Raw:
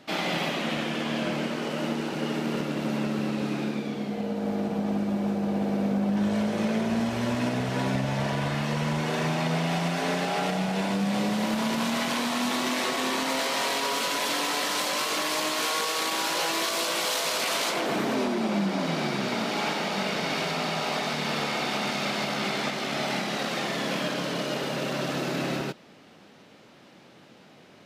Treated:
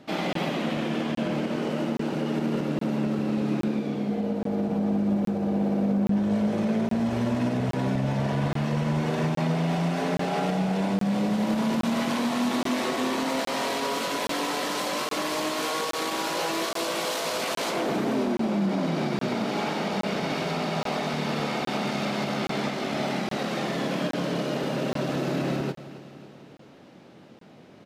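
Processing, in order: tilt shelf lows +4.5 dB, about 900 Hz; limiter -18 dBFS, peak gain reduction 4 dB; on a send: feedback echo 0.274 s, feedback 58%, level -16 dB; on the sum: crackling interface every 0.82 s, samples 1024, zero, from 0.33

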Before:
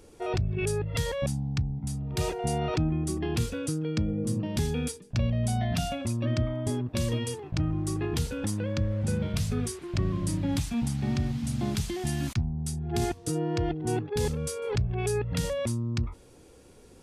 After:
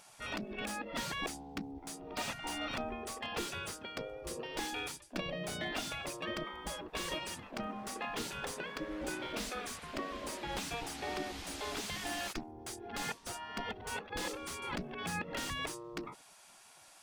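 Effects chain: spectral gate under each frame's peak -15 dB weak; slew limiter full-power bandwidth 32 Hz; gain +3.5 dB

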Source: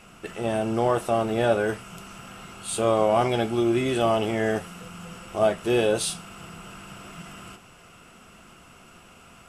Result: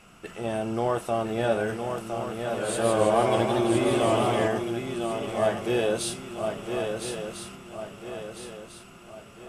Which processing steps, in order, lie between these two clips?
swung echo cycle 1.348 s, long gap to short 3:1, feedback 41%, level -6 dB; 2.31–4.48 warbling echo 0.161 s, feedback 64%, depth 154 cents, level -3 dB; gain -3.5 dB

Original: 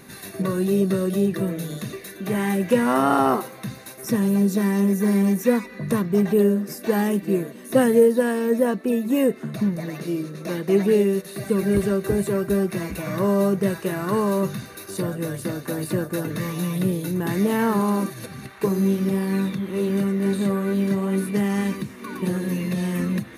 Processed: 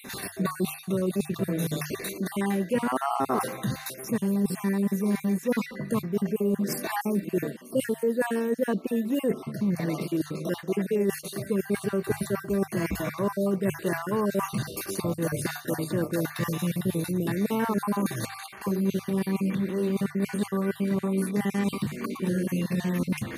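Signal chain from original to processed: random spectral dropouts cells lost 35%; notches 50/100/150 Hz; reverse; compressor 4:1, threshold -31 dBFS, peak gain reduction 16 dB; reverse; gain +6 dB

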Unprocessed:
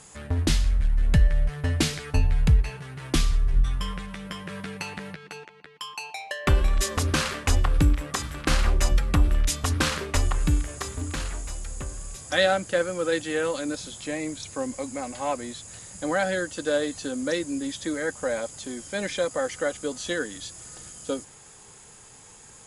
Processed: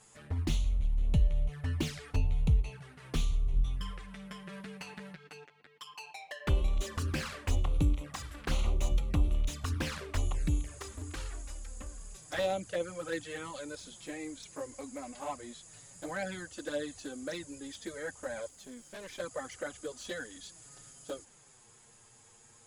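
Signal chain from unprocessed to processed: envelope flanger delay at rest 10 ms, full sweep at -18.5 dBFS; 18.48–19.2 tube stage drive 33 dB, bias 0.65; slew limiter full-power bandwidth 120 Hz; gain -7.5 dB

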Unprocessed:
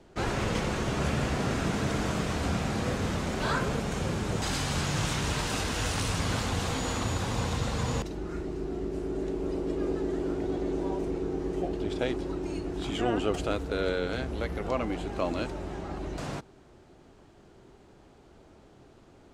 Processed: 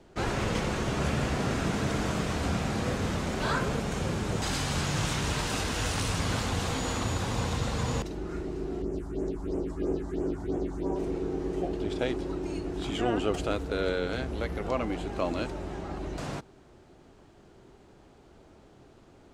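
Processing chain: 8.82–10.96 phaser stages 4, 3 Hz, lowest notch 410–4100 Hz

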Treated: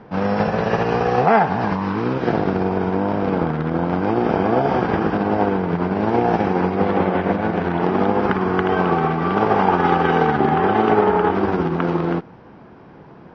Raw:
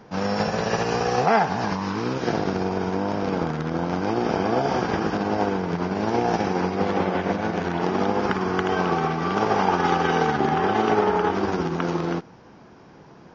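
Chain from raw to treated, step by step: air absorption 300 m; gain +5.5 dB

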